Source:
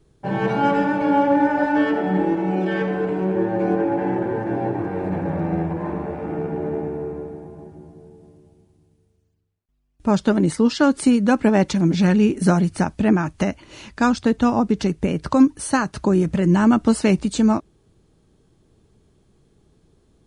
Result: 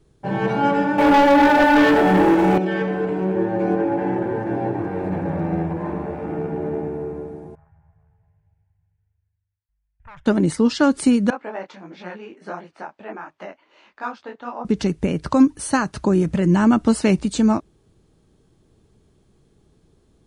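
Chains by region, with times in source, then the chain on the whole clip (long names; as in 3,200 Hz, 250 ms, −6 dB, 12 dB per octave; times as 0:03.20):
0:00.98–0:02.58: high-pass filter 300 Hz 6 dB per octave + leveller curve on the samples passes 3
0:07.55–0:10.26: phaser with its sweep stopped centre 1,200 Hz, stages 6 + tube saturation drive 31 dB, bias 0.65 + drawn EQ curve 130 Hz 0 dB, 210 Hz −24 dB, 320 Hz −23 dB, 560 Hz −18 dB, 1,200 Hz +3 dB, 1,800 Hz −1 dB, 3,100 Hz −12 dB, 8,800 Hz −29 dB
0:11.30–0:14.65: high-pass filter 670 Hz + head-to-tape spacing loss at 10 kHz 32 dB + micro pitch shift up and down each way 51 cents
whole clip: no processing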